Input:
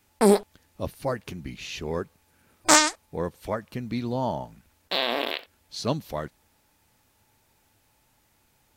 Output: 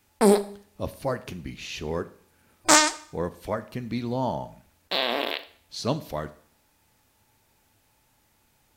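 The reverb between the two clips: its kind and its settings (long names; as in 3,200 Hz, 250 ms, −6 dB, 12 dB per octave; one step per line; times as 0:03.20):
four-comb reverb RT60 0.54 s, combs from 27 ms, DRR 14 dB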